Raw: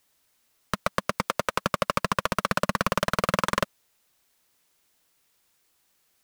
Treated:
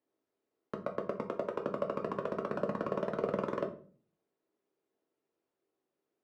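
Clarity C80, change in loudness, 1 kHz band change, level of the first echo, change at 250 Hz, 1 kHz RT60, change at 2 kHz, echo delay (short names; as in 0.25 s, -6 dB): 17.0 dB, -9.5 dB, -13.5 dB, none, -6.0 dB, 0.40 s, -18.5 dB, none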